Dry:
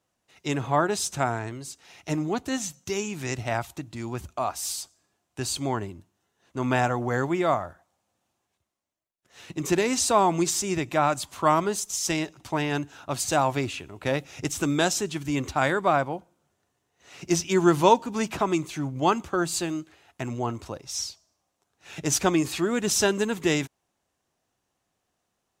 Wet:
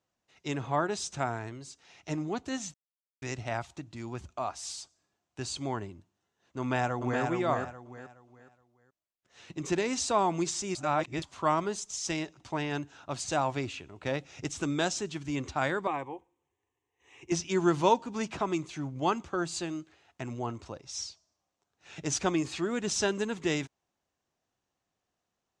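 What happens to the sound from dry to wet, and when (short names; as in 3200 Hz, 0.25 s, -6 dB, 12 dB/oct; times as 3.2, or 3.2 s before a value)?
2.74–3.22 mute
6.59–7.22 echo throw 0.42 s, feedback 30%, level -4 dB
10.75–11.22 reverse
15.87–17.32 fixed phaser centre 940 Hz, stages 8
whole clip: LPF 7600 Hz 24 dB/oct; gain -6 dB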